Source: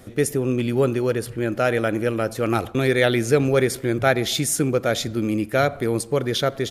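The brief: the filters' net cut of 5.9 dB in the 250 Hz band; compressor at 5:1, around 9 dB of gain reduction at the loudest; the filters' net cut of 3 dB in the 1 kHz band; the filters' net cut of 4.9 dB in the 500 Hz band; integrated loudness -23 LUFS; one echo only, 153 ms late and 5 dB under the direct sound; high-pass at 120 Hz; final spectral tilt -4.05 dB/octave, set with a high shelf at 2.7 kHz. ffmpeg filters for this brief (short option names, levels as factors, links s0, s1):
-af "highpass=120,equalizer=f=250:t=o:g=-6,equalizer=f=500:t=o:g=-3.5,equalizer=f=1000:t=o:g=-4.5,highshelf=f=2700:g=7,acompressor=threshold=0.0631:ratio=5,aecho=1:1:153:0.562,volume=1.58"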